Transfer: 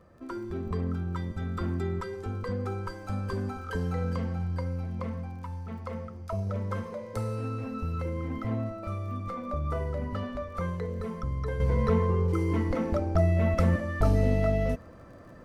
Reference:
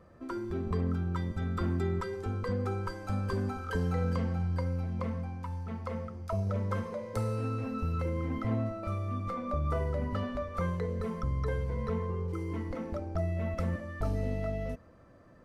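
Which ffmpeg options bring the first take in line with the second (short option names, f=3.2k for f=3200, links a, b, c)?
-af "adeclick=t=4,asetnsamples=n=441:p=0,asendcmd='11.6 volume volume -8.5dB',volume=0dB"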